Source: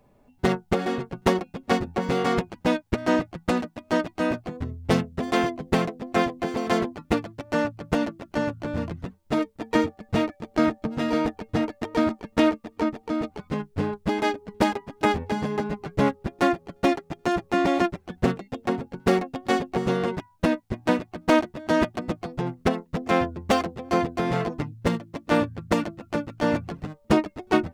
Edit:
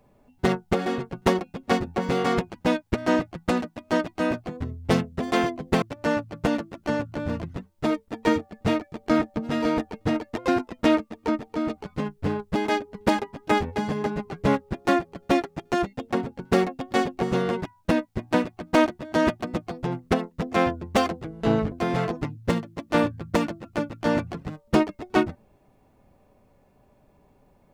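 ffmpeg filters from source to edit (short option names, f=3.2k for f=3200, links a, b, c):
-filter_complex "[0:a]asplit=7[a][b][c][d][e][f][g];[a]atrim=end=5.822[h];[b]atrim=start=7.298:end=11.864[i];[c]atrim=start=11.86:end=12.35,asetpts=PTS-STARTPTS,asetrate=49833,aresample=44100,atrim=end_sample=19123,asetpts=PTS-STARTPTS[j];[d]atrim=start=12.346:end=17.392[k];[e]atrim=start=18.398:end=23.794[l];[f]atrim=start=23.79:end=24.09,asetpts=PTS-STARTPTS,asetrate=27783,aresample=44100[m];[g]atrim=start=24.086[n];[h][i]acrossfade=d=0.004:c1=hsin:c2=hsin[o];[o][j]acrossfade=d=0.004:c1=hsin:c2=hsin[p];[p][k]acrossfade=d=0.004:c1=hsin:c2=hsin[q];[q][l]acrossfade=d=0.004:c1=hsin:c2=hsin[r];[r][m]acrossfade=d=0.004:c1=hsin:c2=hsin[s];[s][n]acrossfade=d=0.004:c1=hsin:c2=hsin"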